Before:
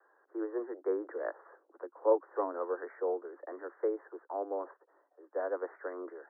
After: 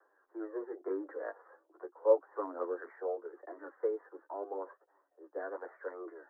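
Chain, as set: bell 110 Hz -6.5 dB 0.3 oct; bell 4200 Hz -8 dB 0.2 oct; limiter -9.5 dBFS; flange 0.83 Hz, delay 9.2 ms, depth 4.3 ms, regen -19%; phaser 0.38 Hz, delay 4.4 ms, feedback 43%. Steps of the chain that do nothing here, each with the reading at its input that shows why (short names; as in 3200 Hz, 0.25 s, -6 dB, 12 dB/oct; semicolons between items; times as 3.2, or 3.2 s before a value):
bell 110 Hz: input band starts at 250 Hz; bell 4200 Hz: input band ends at 1600 Hz; limiter -9.5 dBFS: input peak -14.0 dBFS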